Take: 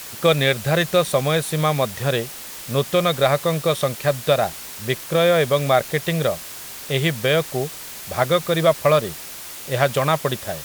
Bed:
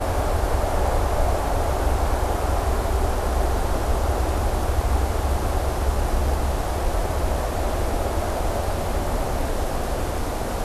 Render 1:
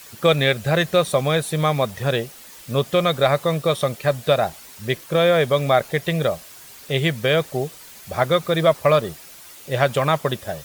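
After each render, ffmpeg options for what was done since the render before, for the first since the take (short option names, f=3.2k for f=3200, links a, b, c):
-af "afftdn=nr=9:nf=-36"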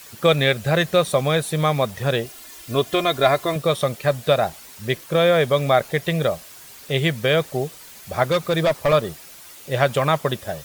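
-filter_complex "[0:a]asettb=1/sr,asplit=3[a][b][c];[a]atrim=end=2.254[d];[b]atrim=start=2.25:end=3.56,asetpts=PTS-STARTPTS,afade=t=in:d=0.004:c=qsin,afade=t=out:st=1.306:d=0.004:c=qsin,aecho=1:1:2.9:0.65,atrim=end_sample=57771[e];[c]atrim=start=3.556[f];[d][e]acrossfade=d=0.004:c1=hsin:c2=qsin[g];[g][f]acrossfade=d=0.004:c1=qsin:c2=hsin,asettb=1/sr,asplit=3[h][i][j];[h]atrim=end=8.234[k];[i]atrim=start=8.23:end=8.93,asetpts=PTS-STARTPTS,afade=t=in:d=0.004:c=qsin,afade=t=out:st=0.696:d=0.004:c=qsin,asoftclip=type=hard:threshold=-14dB[l];[j]atrim=start=8.926[m];[k][l]acrossfade=d=0.004:c1=hsin:c2=qsin[n];[n][m]acrossfade=d=0.004:c1=qsin:c2=hsin"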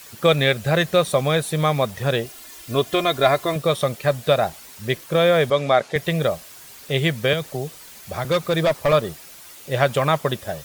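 -filter_complex "[0:a]asettb=1/sr,asplit=3[a][b][c];[a]atrim=end=5.504[d];[b]atrim=start=5.5:end=5.96,asetpts=PTS-STARTPTS,afade=t=in:d=0.004:c=qsin,afade=t=out:st=0.456:d=0.004:c=qsin,highpass=170,lowpass=7.1k[e];[c]atrim=start=5.956[f];[d][e]acrossfade=d=0.004:c1=hsin:c2=qsin[g];[g][f]acrossfade=d=0.004:c1=qsin:c2=hsin,asettb=1/sr,asplit=3[h][i][j];[h]atrim=end=7.334[k];[i]atrim=start=7.33:end=8.25,asetpts=PTS-STARTPTS,afade=t=in:d=0.004:c=qsin,afade=t=out:st=0.916:d=0.004:c=qsin,acrossover=split=160|3000[l][m][n];[m]acompressor=threshold=-23dB:ratio=6:attack=3.2:release=140:knee=2.83:detection=peak[o];[l][o][n]amix=inputs=3:normalize=0[p];[j]atrim=start=8.246[q];[k][p]acrossfade=d=0.004:c1=hsin:c2=qsin[r];[r][q]acrossfade=d=0.004:c1=qsin:c2=hsin"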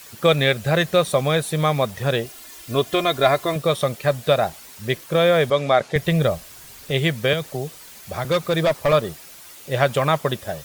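-filter_complex "[0:a]asettb=1/sr,asplit=3[a][b][c];[a]atrim=end=5.804[d];[b]atrim=start=5.8:end=6.91,asetpts=PTS-STARTPTS,afade=t=in:d=0.004:c=qsin,afade=t=out:st=1.106:d=0.004:c=qsin,lowshelf=f=120:g=11.5[e];[c]atrim=start=6.906[f];[d][e]acrossfade=d=0.004:c1=hsin:c2=qsin[g];[g][f]acrossfade=d=0.004:c1=qsin:c2=hsin"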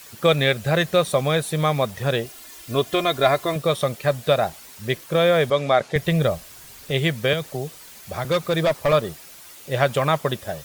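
-af "volume=-1dB"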